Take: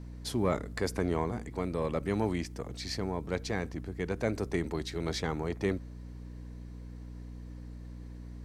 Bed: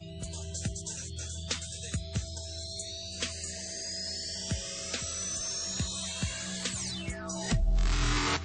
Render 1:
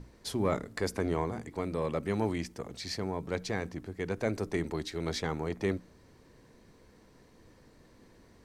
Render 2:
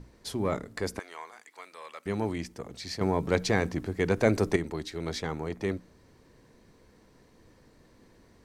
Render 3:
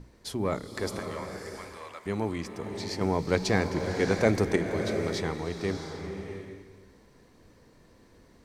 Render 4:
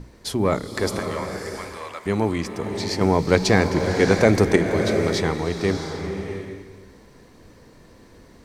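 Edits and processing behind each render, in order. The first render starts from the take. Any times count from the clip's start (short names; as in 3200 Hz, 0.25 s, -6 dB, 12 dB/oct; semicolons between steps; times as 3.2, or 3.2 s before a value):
notches 60/120/180/240/300 Hz
0.99–2.06 HPF 1300 Hz; 3.01–4.56 gain +8 dB
bloom reverb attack 0.68 s, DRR 5 dB
gain +8.5 dB; limiter -2 dBFS, peak gain reduction 2.5 dB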